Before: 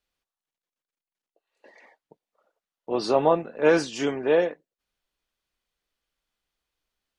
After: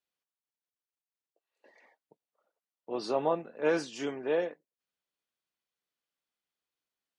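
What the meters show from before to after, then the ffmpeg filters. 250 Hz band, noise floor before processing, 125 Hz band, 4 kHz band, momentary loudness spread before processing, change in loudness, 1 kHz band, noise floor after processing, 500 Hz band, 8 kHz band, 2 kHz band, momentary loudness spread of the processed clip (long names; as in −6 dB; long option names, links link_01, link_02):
−8.5 dB, below −85 dBFS, −10.5 dB, −8.5 dB, 8 LU, −8.5 dB, −8.5 dB, below −85 dBFS, −8.5 dB, −8.5 dB, −8.5 dB, 8 LU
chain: -af "highpass=130,volume=-8.5dB"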